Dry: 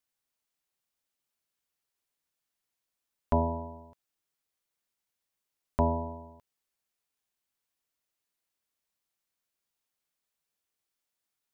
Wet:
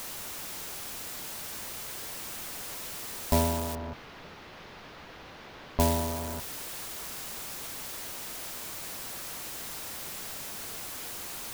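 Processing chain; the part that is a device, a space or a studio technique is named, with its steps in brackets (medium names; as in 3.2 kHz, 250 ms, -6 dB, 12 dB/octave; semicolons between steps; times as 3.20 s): early CD player with a faulty converter (jump at every zero crossing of -30.5 dBFS; sampling jitter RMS 0.12 ms); 3.75–5.80 s: distance through air 280 m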